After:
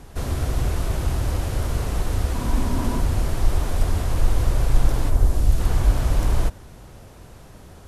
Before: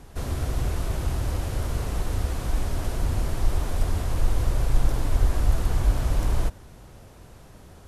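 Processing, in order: 2.34–2.99 small resonant body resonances 240/980 Hz, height 9 dB -> 14 dB; 5.09–5.59 bell 3600 Hz -> 930 Hz -8 dB 2.3 oct; gain +3.5 dB

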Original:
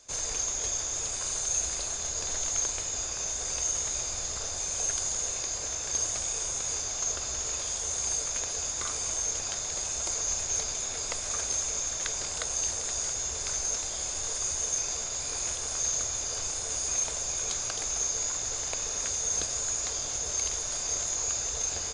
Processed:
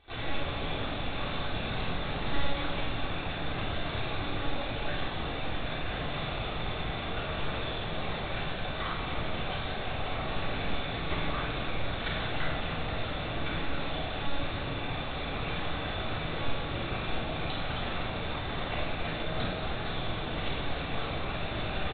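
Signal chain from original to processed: monotone LPC vocoder at 8 kHz 280 Hz; doubler 44 ms -14 dB; shoebox room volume 1700 m³, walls mixed, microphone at 3.6 m

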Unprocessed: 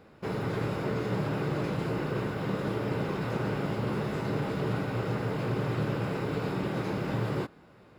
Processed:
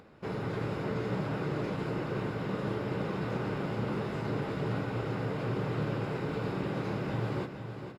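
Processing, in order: high shelf 11000 Hz -12 dB; on a send: feedback echo 0.462 s, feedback 40%, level -8.5 dB; on the sum: upward compressor, threshold -49 dBFS; gain -3 dB

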